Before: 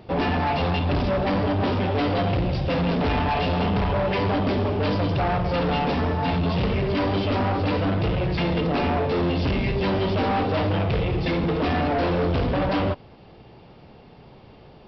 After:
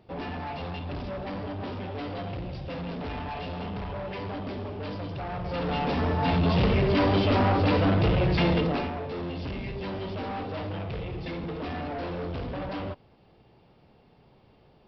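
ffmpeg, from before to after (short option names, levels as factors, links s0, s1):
-af "volume=1.06,afade=t=in:st=5.28:d=1.3:silence=0.237137,afade=t=out:st=8.5:d=0.41:silence=0.266073"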